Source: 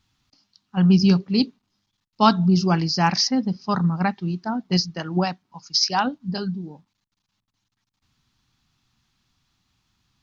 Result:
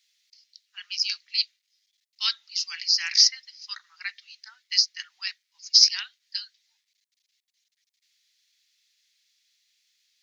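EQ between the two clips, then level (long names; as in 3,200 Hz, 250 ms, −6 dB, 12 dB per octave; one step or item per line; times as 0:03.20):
elliptic high-pass filter 2,000 Hz, stop band 80 dB
parametric band 2,700 Hz −4 dB 0.8 octaves
+5.5 dB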